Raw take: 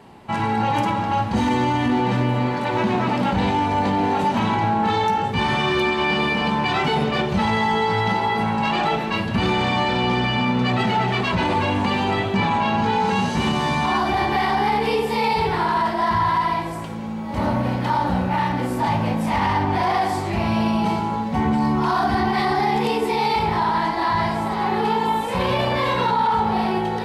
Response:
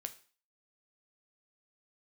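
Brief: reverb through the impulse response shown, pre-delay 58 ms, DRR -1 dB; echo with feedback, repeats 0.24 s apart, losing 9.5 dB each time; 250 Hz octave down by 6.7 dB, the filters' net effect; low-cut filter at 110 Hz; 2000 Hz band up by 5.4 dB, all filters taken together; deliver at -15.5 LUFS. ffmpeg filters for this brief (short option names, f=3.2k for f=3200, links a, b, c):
-filter_complex "[0:a]highpass=110,equalizer=f=250:t=o:g=-8.5,equalizer=f=2k:t=o:g=6.5,aecho=1:1:240|480|720|960:0.335|0.111|0.0365|0.012,asplit=2[a][b];[1:a]atrim=start_sample=2205,adelay=58[c];[b][c]afir=irnorm=-1:irlink=0,volume=3.5dB[d];[a][d]amix=inputs=2:normalize=0,volume=0.5dB"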